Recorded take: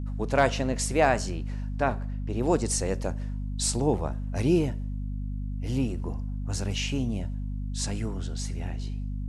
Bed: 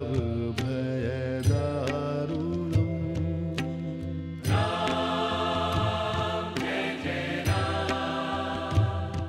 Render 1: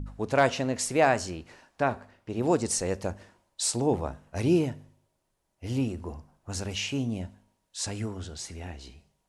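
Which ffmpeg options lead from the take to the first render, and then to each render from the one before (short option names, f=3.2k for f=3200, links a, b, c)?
-af "bandreject=f=50:t=h:w=4,bandreject=f=100:t=h:w=4,bandreject=f=150:t=h:w=4,bandreject=f=200:t=h:w=4,bandreject=f=250:t=h:w=4"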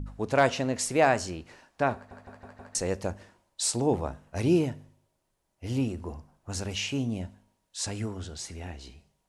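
-filter_complex "[0:a]asplit=6[a][b][c][d][e][f];[a]atrim=end=2.112[g];[b]atrim=start=1.948:end=2.112[h];[c]atrim=start=1.948:end=2.112[i];[d]atrim=start=1.948:end=2.112[j];[e]atrim=start=1.948:end=2.112[k];[f]atrim=start=2.748[l];[g][h]acrossfade=d=0.004:c1=hsin:c2=hsin[m];[m][i]acrossfade=d=0.004:c1=hsin:c2=hsin[n];[n][j]acrossfade=d=0.004:c1=hsin:c2=hsin[o];[o][k]acrossfade=d=0.004:c1=hsin:c2=hsin[p];[p][l]acrossfade=d=0.004:c1=hsin:c2=hsin"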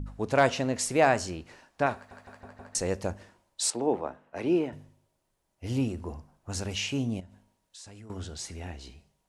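-filter_complex "[0:a]asettb=1/sr,asplit=3[a][b][c];[a]atrim=end=1.864[d];[b]atrim=start=1.86:end=2.41,asetpts=PTS-STARTPTS,afade=t=in:d=0.004:c=qsin,afade=t=out:st=0.546:d=0.004:c=qsin,tiltshelf=f=970:g=-4.5[e];[c]atrim=start=2.406[f];[d][e]acrossfade=d=0.004:c1=hsin:c2=qsin[g];[g][f]acrossfade=d=0.004:c1=qsin:c2=hsin,asettb=1/sr,asplit=3[h][i][j];[h]atrim=end=3.704[k];[i]atrim=start=3.7:end=4.73,asetpts=PTS-STARTPTS,afade=t=in:d=0.004:c=qsin,afade=t=out:st=1.026:d=0.004:c=qsin,acrossover=split=230 3100:gain=0.112 1 0.178[l][m][n];[l][m][n]amix=inputs=3:normalize=0[o];[j]atrim=start=4.726[p];[k][o]acrossfade=d=0.004:c1=hsin:c2=qsin[q];[q][p]acrossfade=d=0.004:c1=qsin:c2=hsin,asettb=1/sr,asplit=3[r][s][t];[r]atrim=end=7.204[u];[s]atrim=start=7.2:end=8.1,asetpts=PTS-STARTPTS,afade=t=in:d=0.004:c=qsin,afade=t=out:st=0.896:d=0.004:c=qsin,acompressor=threshold=-46dB:ratio=5:attack=3.2:release=140:knee=1:detection=peak[v];[t]atrim=start=8.096[w];[u][v]acrossfade=d=0.004:c1=hsin:c2=qsin[x];[x][w]acrossfade=d=0.004:c1=qsin:c2=hsin"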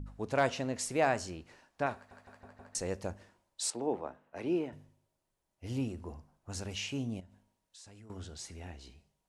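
-af "volume=-6.5dB"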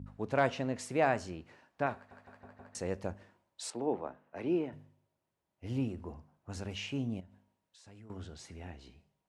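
-af "highpass=85,bass=f=250:g=2,treble=f=4k:g=-9"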